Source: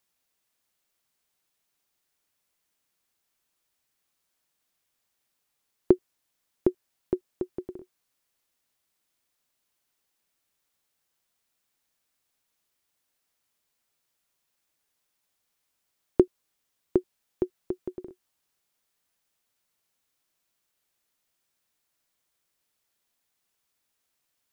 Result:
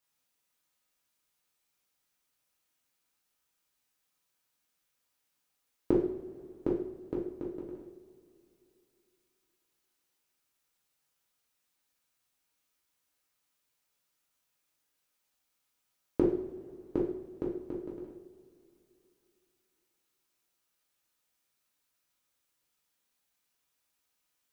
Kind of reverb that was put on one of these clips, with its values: two-slope reverb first 0.56 s, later 3 s, from -19 dB, DRR -5.5 dB; gain -8 dB

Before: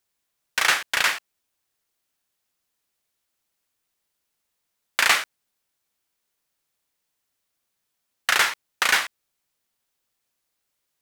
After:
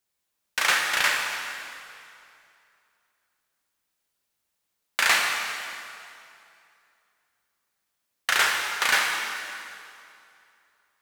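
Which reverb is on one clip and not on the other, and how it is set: plate-style reverb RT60 2.6 s, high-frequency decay 0.85×, DRR 0 dB; gain -3.5 dB

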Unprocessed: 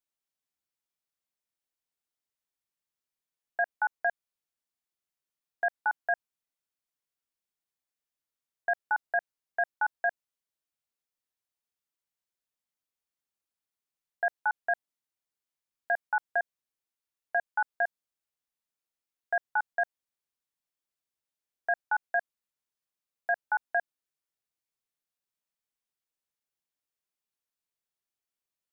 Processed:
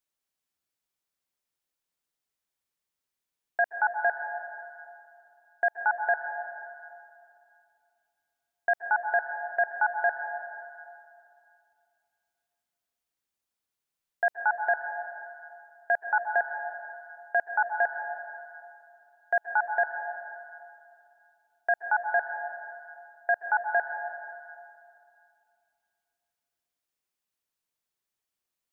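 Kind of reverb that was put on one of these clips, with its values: plate-style reverb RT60 2.5 s, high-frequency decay 0.6×, pre-delay 0.115 s, DRR 6.5 dB; gain +3 dB

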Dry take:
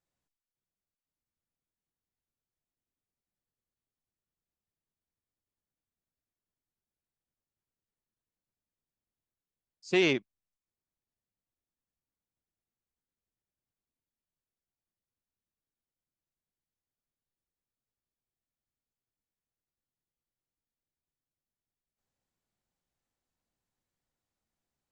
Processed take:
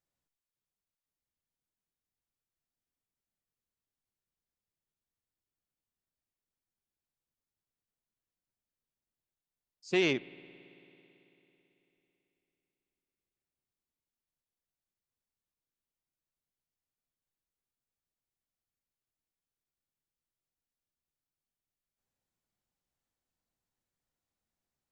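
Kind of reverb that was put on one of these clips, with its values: spring tank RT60 3.6 s, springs 55 ms, chirp 30 ms, DRR 19 dB; gain -2.5 dB

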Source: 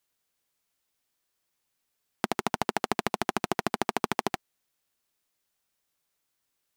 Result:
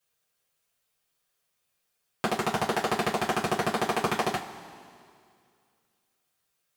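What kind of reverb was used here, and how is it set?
two-slope reverb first 0.21 s, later 2.3 s, from -20 dB, DRR -8.5 dB; gain -6 dB

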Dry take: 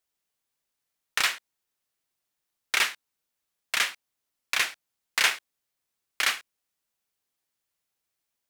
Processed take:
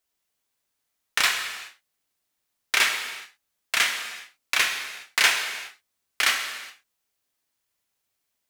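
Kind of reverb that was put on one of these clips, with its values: non-linear reverb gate 0.44 s falling, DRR 3.5 dB; gain +2.5 dB

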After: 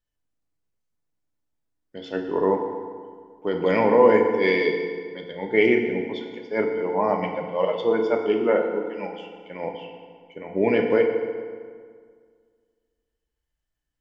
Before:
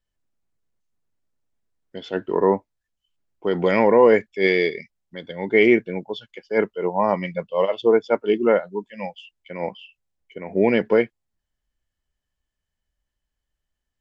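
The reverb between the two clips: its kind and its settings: FDN reverb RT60 1.9 s, low-frequency decay 1.1×, high-frequency decay 0.7×, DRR 2.5 dB; gain -4 dB

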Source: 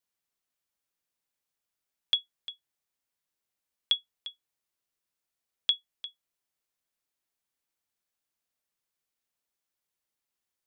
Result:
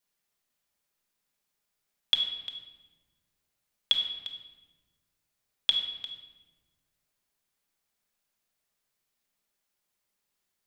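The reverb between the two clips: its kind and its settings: shoebox room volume 930 m³, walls mixed, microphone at 1.3 m; gain +3.5 dB

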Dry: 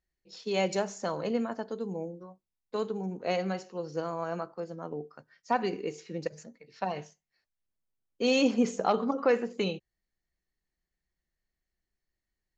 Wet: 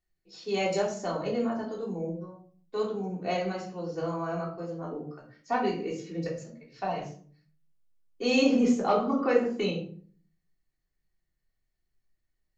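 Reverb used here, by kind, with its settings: shoebox room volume 400 m³, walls furnished, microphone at 3.4 m; gain -4.5 dB

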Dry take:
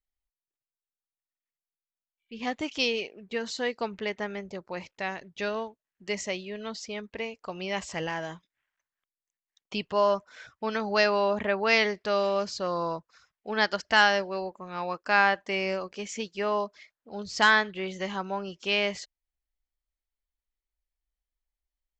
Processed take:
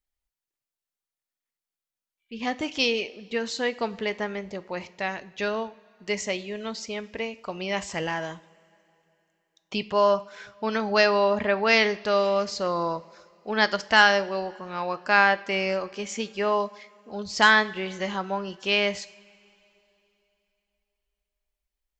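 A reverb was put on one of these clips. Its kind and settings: two-slope reverb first 0.52 s, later 3.2 s, from -18 dB, DRR 13.5 dB; gain +3 dB

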